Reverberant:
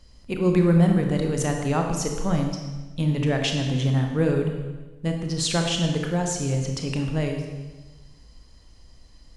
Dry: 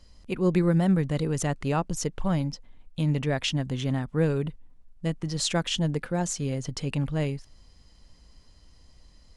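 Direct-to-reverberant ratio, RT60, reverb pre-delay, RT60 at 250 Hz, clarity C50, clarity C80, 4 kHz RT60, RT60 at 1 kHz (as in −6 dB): 3.0 dB, 1.2 s, 24 ms, 1.4 s, 4.5 dB, 6.5 dB, 1.1 s, 1.2 s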